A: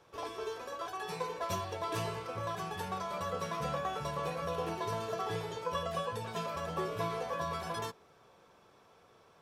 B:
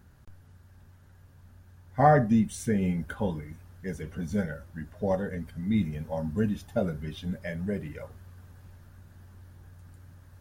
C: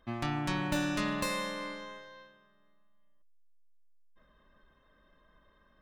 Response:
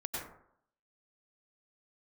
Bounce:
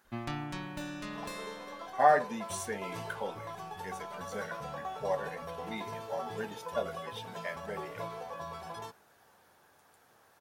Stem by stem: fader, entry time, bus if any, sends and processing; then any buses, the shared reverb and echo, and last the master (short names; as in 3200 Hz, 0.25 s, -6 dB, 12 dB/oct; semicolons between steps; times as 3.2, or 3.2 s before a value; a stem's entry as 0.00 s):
-7.0 dB, 1.00 s, no send, bell 810 Hz +9.5 dB 0.32 oct
-0.5 dB, 0.00 s, no send, HPF 600 Hz 12 dB/oct
+1.0 dB, 0.05 s, no send, auto duck -10 dB, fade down 0.70 s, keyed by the second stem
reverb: off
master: dry